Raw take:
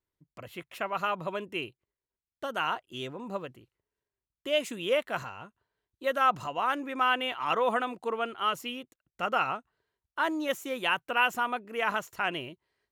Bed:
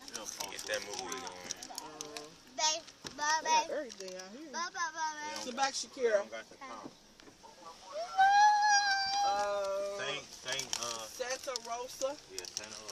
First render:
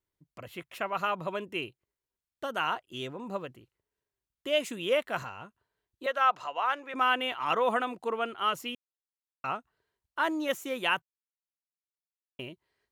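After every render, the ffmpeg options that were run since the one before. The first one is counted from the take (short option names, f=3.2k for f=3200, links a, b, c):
-filter_complex "[0:a]asettb=1/sr,asplit=3[a][b][c];[a]atrim=end=6.064[d];[b]atrim=start=6.06:end=6.94,asetpts=PTS-STARTPTS,afade=t=in:d=0.004:c=qsin,afade=t=out:st=0.876:d=0.004:c=qsin,acrossover=split=440 6200:gain=0.0891 1 0.224[e][f][g];[e][f][g]amix=inputs=3:normalize=0[h];[c]atrim=start=6.936[i];[d][h]acrossfade=d=0.004:c1=hsin:c2=qsin[j];[j][i]acrossfade=d=0.004:c1=qsin:c2=hsin,asplit=5[k][l][m][n][o];[k]atrim=end=8.75,asetpts=PTS-STARTPTS,afade=t=out:st=8.746:d=0.004:c=hsin[p];[l]atrim=start=8.75:end=9.44,asetpts=PTS-STARTPTS,volume=0[q];[m]atrim=start=9.44:end=11.02,asetpts=PTS-STARTPTS,afade=t=in:d=0.004:c=hsin,afade=t=out:st=1.576:d=0.004:c=hsin[r];[n]atrim=start=11.02:end=12.39,asetpts=PTS-STARTPTS,volume=0[s];[o]atrim=start=12.39,asetpts=PTS-STARTPTS,afade=t=in:d=0.004:c=hsin[t];[p][q][r][s][t]concat=n=5:v=0:a=1"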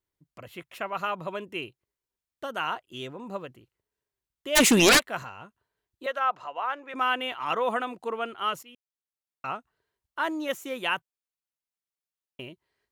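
-filter_complex "[0:a]asplit=3[a][b][c];[a]afade=t=out:st=4.55:d=0.02[d];[b]aeval=exprs='0.211*sin(PI/2*7.94*val(0)/0.211)':c=same,afade=t=in:st=4.55:d=0.02,afade=t=out:st=4.98:d=0.02[e];[c]afade=t=in:st=4.98:d=0.02[f];[d][e][f]amix=inputs=3:normalize=0,asettb=1/sr,asplit=3[g][h][i];[g]atrim=end=6.194[j];[h]atrim=start=6.19:end=6.88,asetpts=PTS-STARTPTS,afade=t=in:d=0.004:c=qsin,afade=t=out:st=0.686:d=0.004:c=qsin,highshelf=f=2.9k:g=-9.5[k];[i]atrim=start=6.876[l];[j][k]acrossfade=d=0.004:c1=hsin:c2=qsin[m];[m][l]acrossfade=d=0.004:c1=qsin:c2=hsin,asplit=2[n][o];[n]atrim=end=8.63,asetpts=PTS-STARTPTS,afade=t=out:st=8.626:d=0.004:c=hsin:silence=0.133352[p];[o]atrim=start=8.63,asetpts=PTS-STARTPTS,afade=t=in:d=0.82:silence=0.133352[q];[p][q]concat=n=2:v=0:a=1"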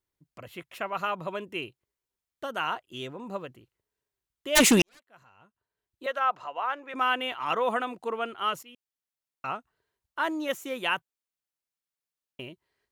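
-filter_complex "[0:a]asplit=2[a][b];[a]atrim=end=4.82,asetpts=PTS-STARTPTS,afade=t=out:st=4.816:d=0.004:c=hsin[c];[b]atrim=start=4.82,asetpts=PTS-STARTPTS,afade=t=in:d=1.3:c=qua[d];[c][d]concat=n=2:v=0:a=1"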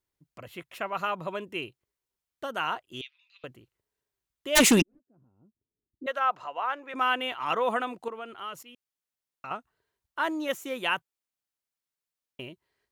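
-filter_complex "[0:a]asettb=1/sr,asplit=3[a][b][c];[a]atrim=end=3.014[d];[b]atrim=start=3.01:end=3.44,asetpts=PTS-STARTPTS,afade=t=in:d=0.004:c=qsin,afade=t=out:st=0.426:d=0.004:c=qsin,asuperpass=centerf=3400:order=8:qfactor=1.1[e];[c]atrim=start=3.436[f];[d][e]acrossfade=d=0.004:c1=hsin:c2=qsin[g];[g][f]acrossfade=d=0.004:c1=qsin:c2=hsin,asplit=3[h][i][j];[h]afade=t=out:st=4.8:d=0.02[k];[i]lowpass=f=280:t=q:w=2.4,afade=t=in:st=4.8:d=0.02,afade=t=out:st=6.06:d=0.02[l];[j]afade=t=in:st=6.06:d=0.02[m];[k][l][m]amix=inputs=3:normalize=0,asettb=1/sr,asplit=3[n][o][p];[n]atrim=end=8.084[q];[o]atrim=start=8.08:end=9.51,asetpts=PTS-STARTPTS,afade=t=in:d=0.004:c=qsin,afade=t=out:st=1.426:d=0.004:c=qsin,acompressor=threshold=-41dB:ratio=2:attack=3.2:release=140:knee=1:detection=peak[r];[p]atrim=start=9.506[s];[q][r]acrossfade=d=0.004:c1=hsin:c2=qsin[t];[t][s]acrossfade=d=0.004:c1=qsin:c2=hsin"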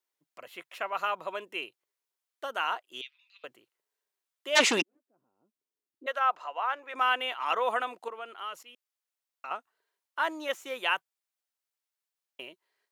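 -filter_complex "[0:a]acrossover=split=6500[a][b];[b]acompressor=threshold=-53dB:ratio=4:attack=1:release=60[c];[a][c]amix=inputs=2:normalize=0,highpass=500"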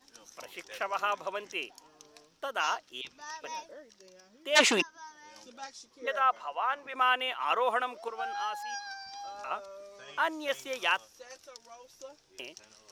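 -filter_complex "[1:a]volume=-11.5dB[a];[0:a][a]amix=inputs=2:normalize=0"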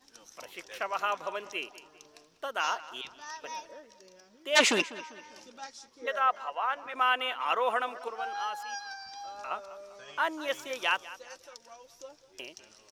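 -filter_complex "[0:a]asplit=2[a][b];[b]adelay=197,lowpass=f=4.4k:p=1,volume=-16.5dB,asplit=2[c][d];[d]adelay=197,lowpass=f=4.4k:p=1,volume=0.44,asplit=2[e][f];[f]adelay=197,lowpass=f=4.4k:p=1,volume=0.44,asplit=2[g][h];[h]adelay=197,lowpass=f=4.4k:p=1,volume=0.44[i];[a][c][e][g][i]amix=inputs=5:normalize=0"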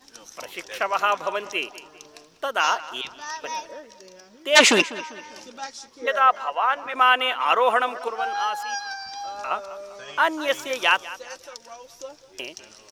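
-af "volume=9dB,alimiter=limit=-2dB:level=0:latency=1"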